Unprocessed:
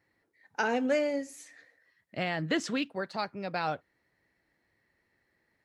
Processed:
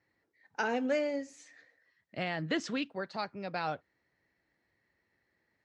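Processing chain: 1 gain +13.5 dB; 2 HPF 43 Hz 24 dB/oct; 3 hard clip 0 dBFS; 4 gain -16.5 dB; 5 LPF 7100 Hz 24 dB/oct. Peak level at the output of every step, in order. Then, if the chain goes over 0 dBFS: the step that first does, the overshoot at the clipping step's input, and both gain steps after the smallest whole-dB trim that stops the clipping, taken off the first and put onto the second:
-1.5, -1.5, -1.5, -18.0, -18.0 dBFS; no overload

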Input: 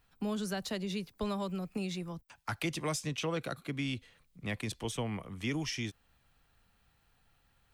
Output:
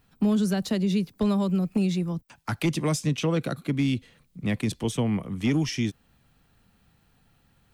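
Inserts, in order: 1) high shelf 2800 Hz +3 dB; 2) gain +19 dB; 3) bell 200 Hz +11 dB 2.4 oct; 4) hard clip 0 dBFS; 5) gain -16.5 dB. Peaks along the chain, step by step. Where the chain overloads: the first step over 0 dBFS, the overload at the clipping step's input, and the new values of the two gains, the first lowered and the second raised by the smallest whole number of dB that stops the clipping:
-22.5, -3.5, +3.5, 0.0, -16.5 dBFS; step 3, 3.5 dB; step 2 +15 dB, step 5 -12.5 dB

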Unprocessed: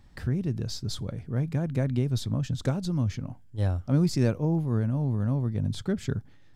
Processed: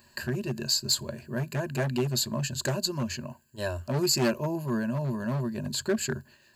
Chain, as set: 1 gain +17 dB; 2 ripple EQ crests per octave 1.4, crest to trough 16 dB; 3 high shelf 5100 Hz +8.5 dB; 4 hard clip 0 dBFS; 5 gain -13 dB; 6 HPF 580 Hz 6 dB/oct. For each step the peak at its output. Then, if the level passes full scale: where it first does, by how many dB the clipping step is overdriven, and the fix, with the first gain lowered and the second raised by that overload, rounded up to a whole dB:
+5.0, +8.0, +8.0, 0.0, -13.0, -13.0 dBFS; step 1, 8.0 dB; step 1 +9 dB, step 5 -5 dB

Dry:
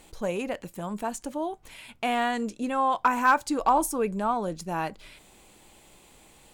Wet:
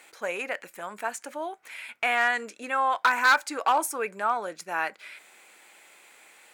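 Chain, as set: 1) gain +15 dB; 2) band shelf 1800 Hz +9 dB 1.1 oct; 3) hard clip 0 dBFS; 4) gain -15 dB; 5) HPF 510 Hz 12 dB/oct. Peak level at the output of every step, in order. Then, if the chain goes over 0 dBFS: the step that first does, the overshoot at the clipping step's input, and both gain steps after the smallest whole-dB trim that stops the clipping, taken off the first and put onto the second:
+3.0, +9.5, 0.0, -15.0, -10.5 dBFS; step 1, 9.5 dB; step 1 +5 dB, step 4 -5 dB

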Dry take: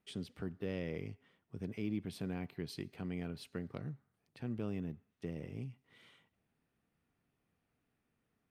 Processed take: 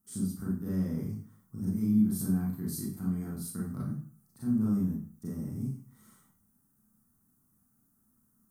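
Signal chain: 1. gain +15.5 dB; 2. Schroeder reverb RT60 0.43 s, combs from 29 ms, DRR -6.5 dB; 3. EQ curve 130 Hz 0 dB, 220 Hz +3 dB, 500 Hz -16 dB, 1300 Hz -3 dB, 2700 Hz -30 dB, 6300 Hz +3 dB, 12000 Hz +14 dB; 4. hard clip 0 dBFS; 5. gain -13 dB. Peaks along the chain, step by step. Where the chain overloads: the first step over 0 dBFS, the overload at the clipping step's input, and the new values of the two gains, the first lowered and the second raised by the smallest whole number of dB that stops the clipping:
-10.5, -5.0, -3.5, -3.5, -16.5 dBFS; no overload

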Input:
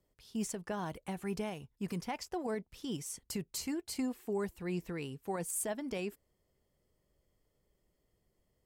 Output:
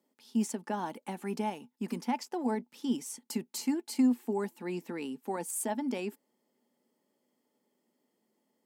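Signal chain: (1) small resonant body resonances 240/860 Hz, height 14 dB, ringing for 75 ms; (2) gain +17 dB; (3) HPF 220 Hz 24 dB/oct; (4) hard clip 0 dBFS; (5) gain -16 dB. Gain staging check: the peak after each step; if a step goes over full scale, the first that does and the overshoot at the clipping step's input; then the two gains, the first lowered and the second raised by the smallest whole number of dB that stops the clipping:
-18.0, -1.0, -2.0, -2.0, -18.0 dBFS; no overload

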